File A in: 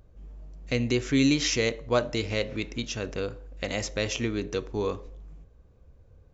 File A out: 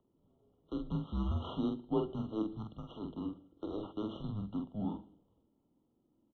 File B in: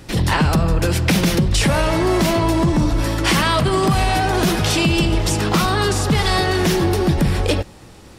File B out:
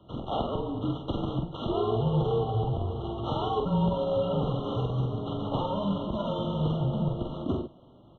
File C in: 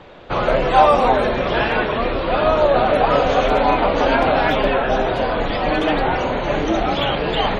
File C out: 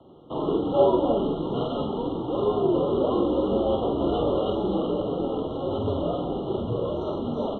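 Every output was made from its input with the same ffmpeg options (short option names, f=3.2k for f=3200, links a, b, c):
-filter_complex "[0:a]bandreject=f=196.5:t=h:w=4,bandreject=f=393:t=h:w=4,bandreject=f=589.5:t=h:w=4,bandreject=f=786:t=h:w=4,bandreject=f=982.5:t=h:w=4,bandreject=f=1.179k:t=h:w=4,bandreject=f=1.3755k:t=h:w=4,bandreject=f=1.572k:t=h:w=4,bandreject=f=1.7685k:t=h:w=4,bandreject=f=1.965k:t=h:w=4,bandreject=f=2.1615k:t=h:w=4,bandreject=f=2.358k:t=h:w=4,bandreject=f=2.5545k:t=h:w=4,bandreject=f=2.751k:t=h:w=4,bandreject=f=2.9475k:t=h:w=4,bandreject=f=3.144k:t=h:w=4,bandreject=f=3.3405k:t=h:w=4,bandreject=f=3.537k:t=h:w=4,bandreject=f=3.7335k:t=h:w=4,bandreject=f=3.93k:t=h:w=4,bandreject=f=4.1265k:t=h:w=4,bandreject=f=4.323k:t=h:w=4,bandreject=f=4.5195k:t=h:w=4,bandreject=f=4.716k:t=h:w=4,bandreject=f=4.9125k:t=h:w=4,bandreject=f=5.109k:t=h:w=4,bandreject=f=5.3055k:t=h:w=4,bandreject=f=5.502k:t=h:w=4,bandreject=f=5.6985k:t=h:w=4,bandreject=f=5.895k:t=h:w=4,bandreject=f=6.0915k:t=h:w=4,bandreject=f=6.288k:t=h:w=4,bandreject=f=6.4845k:t=h:w=4,bandreject=f=6.681k:t=h:w=4,bandreject=f=6.8775k:t=h:w=4,bandreject=f=7.074k:t=h:w=4,bandreject=f=7.2705k:t=h:w=4,bandreject=f=7.467k:t=h:w=4,acrossover=split=430|1200[a][b][c];[c]aeval=exprs='abs(val(0))':c=same[d];[a][b][d]amix=inputs=3:normalize=0,highpass=f=320:t=q:w=0.5412,highpass=f=320:t=q:w=1.307,lowpass=f=3.5k:t=q:w=0.5176,lowpass=f=3.5k:t=q:w=0.7071,lowpass=f=3.5k:t=q:w=1.932,afreqshift=-210,asplit=2[e][f];[f]adelay=46,volume=-4.5dB[g];[e][g]amix=inputs=2:normalize=0,afftfilt=real='re*eq(mod(floor(b*sr/1024/1400),2),0)':imag='im*eq(mod(floor(b*sr/1024/1400),2),0)':win_size=1024:overlap=0.75,volume=-7dB"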